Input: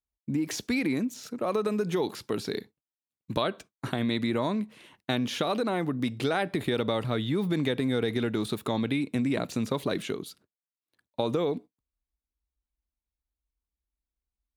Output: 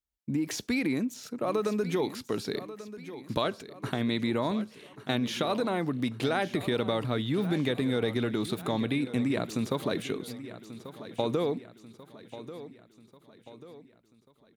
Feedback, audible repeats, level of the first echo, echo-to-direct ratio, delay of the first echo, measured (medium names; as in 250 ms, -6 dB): 48%, 4, -14.0 dB, -13.0 dB, 1139 ms